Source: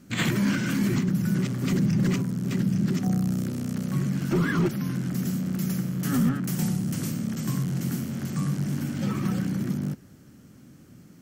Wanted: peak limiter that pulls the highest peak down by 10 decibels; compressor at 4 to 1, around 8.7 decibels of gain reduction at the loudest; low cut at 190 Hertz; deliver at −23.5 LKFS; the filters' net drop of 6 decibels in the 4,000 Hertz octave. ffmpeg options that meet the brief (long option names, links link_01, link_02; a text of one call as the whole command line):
ffmpeg -i in.wav -af "highpass=190,equalizer=frequency=4000:width_type=o:gain=-8.5,acompressor=threshold=-33dB:ratio=4,volume=16dB,alimiter=limit=-15.5dB:level=0:latency=1" out.wav